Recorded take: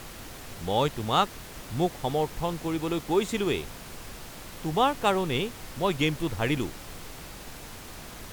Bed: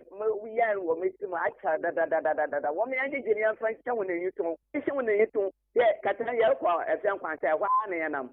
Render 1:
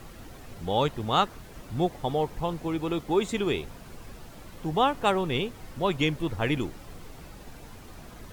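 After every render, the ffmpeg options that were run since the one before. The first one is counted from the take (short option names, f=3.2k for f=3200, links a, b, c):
-af "afftdn=nr=9:nf=-43"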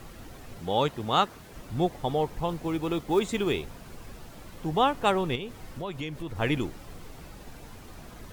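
-filter_complex "[0:a]asettb=1/sr,asplit=3[a][b][c];[a]atrim=end=0.594[d];[b]atrim=start=0.59:end=1.53,asetpts=PTS-STARTPTS,afade=t=in:d=0.004:c=qsin,afade=t=out:st=0.936:d=0.004:c=qsin,highpass=f=110:p=1[e];[c]atrim=start=1.526[f];[d][e]acrossfade=d=0.004:c1=hsin:c2=qsin[g];[g][f]acrossfade=d=0.004:c1=qsin:c2=hsin,asettb=1/sr,asplit=3[h][i][j];[h]atrim=end=2.494[k];[i]atrim=start=2.49:end=4.62,asetpts=PTS-STARTPTS,afade=t=in:d=0.004:c=qsin,afade=t=out:st=2.126:d=0.004:c=qsin,acrusher=bits=7:mode=log:mix=0:aa=0.000001[l];[j]atrim=start=4.616[m];[k][l]acrossfade=d=0.004:c1=hsin:c2=qsin[n];[n][m]acrossfade=d=0.004:c1=qsin:c2=hsin,asettb=1/sr,asplit=3[o][p][q];[o]atrim=end=5.354[r];[p]atrim=start=5.35:end=6.36,asetpts=PTS-STARTPTS,afade=t=in:d=0.004:c=qsin,afade=t=out:st=1.006:d=0.004:c=qsin,acompressor=threshold=-33dB:ratio=3:attack=3.2:release=140:knee=1:detection=peak[s];[q]atrim=start=6.356[t];[r][s]acrossfade=d=0.004:c1=hsin:c2=qsin[u];[u][t]acrossfade=d=0.004:c1=qsin:c2=hsin"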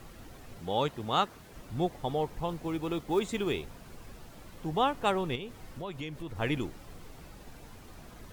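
-af "volume=-4dB"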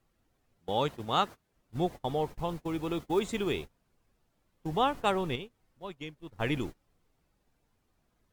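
-af "agate=range=-25dB:threshold=-37dB:ratio=16:detection=peak"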